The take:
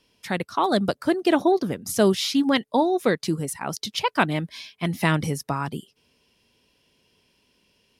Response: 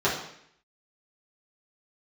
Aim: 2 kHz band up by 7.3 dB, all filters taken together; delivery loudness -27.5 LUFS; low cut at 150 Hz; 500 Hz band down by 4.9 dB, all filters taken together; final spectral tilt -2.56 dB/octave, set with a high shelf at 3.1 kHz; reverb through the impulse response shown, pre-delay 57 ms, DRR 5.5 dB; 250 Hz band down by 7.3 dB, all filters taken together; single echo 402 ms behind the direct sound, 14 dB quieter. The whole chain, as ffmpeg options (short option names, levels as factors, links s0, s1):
-filter_complex "[0:a]highpass=150,equalizer=f=250:t=o:g=-8,equalizer=f=500:t=o:g=-4.5,equalizer=f=2000:t=o:g=7.5,highshelf=f=3100:g=6.5,aecho=1:1:402:0.2,asplit=2[s0][s1];[1:a]atrim=start_sample=2205,adelay=57[s2];[s1][s2]afir=irnorm=-1:irlink=0,volume=0.0944[s3];[s0][s3]amix=inputs=2:normalize=0,volume=0.531"